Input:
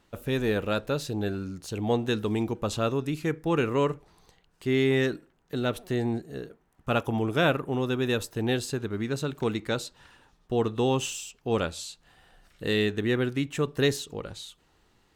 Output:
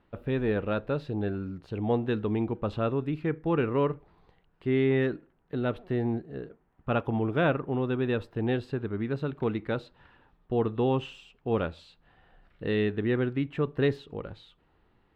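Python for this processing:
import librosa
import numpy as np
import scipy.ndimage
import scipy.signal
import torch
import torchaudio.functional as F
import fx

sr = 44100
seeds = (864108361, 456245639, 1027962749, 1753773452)

y = fx.air_absorb(x, sr, metres=430.0)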